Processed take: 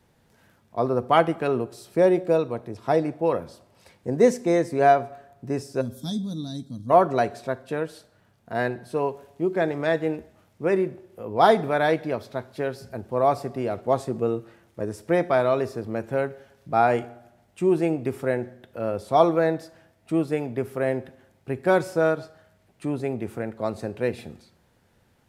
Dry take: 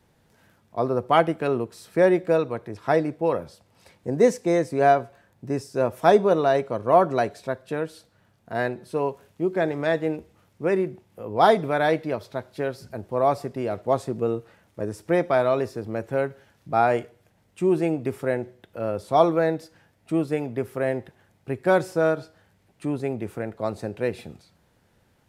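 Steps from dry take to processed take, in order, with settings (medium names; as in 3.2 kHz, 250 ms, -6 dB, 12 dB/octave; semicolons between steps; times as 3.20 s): 1.61–3.03 s: peaking EQ 1.7 kHz -7 dB 0.89 oct; 5.81–6.90 s: time-frequency box 310–3200 Hz -28 dB; reverberation RT60 0.90 s, pre-delay 4 ms, DRR 17 dB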